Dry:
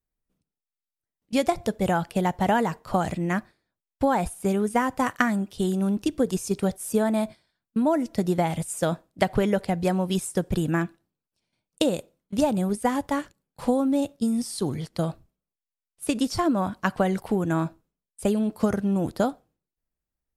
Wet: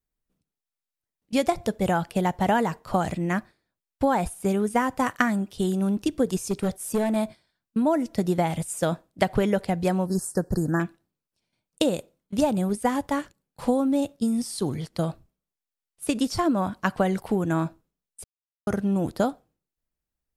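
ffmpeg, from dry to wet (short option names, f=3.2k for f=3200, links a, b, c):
-filter_complex "[0:a]asettb=1/sr,asplit=3[a][b][c];[a]atrim=end=6.394[d];[b]atrim=start=6.39:end=7.16,asetpts=PTS-STARTPTS,afade=t=in:d=0.004:c=qsin,afade=t=out:st=0.766:d=0.004:c=qsin,asoftclip=type=hard:threshold=-19dB[e];[c]atrim=start=7.156[f];[d][e]acrossfade=d=0.004:c1=hsin:c2=qsin[g];[g][f]acrossfade=d=0.004:c1=qsin:c2=hsin,asettb=1/sr,asplit=3[h][i][j];[h]atrim=end=10.064[k];[i]atrim=start=10.06:end=10.8,asetpts=PTS-STARTPTS,afade=t=in:d=0.004:c=qsin,afade=t=out:st=0.736:d=0.004:c=qsin,asuperstop=centerf=2800:order=20:qfactor=1.2[l];[j]atrim=start=10.796[m];[k][l]acrossfade=d=0.004:c1=hsin:c2=qsin[n];[n][m]acrossfade=d=0.004:c1=qsin:c2=hsin,asplit=3[o][p][q];[o]atrim=end=18.24,asetpts=PTS-STARTPTS,afade=t=out:st=18.236:d=0.004:c=hsin[r];[p]atrim=start=18.24:end=18.67,asetpts=PTS-STARTPTS,volume=0[s];[q]atrim=start=18.67,asetpts=PTS-STARTPTS,afade=t=in:d=0.004:c=hsin[t];[r][s][t]concat=n=3:v=0:a=1"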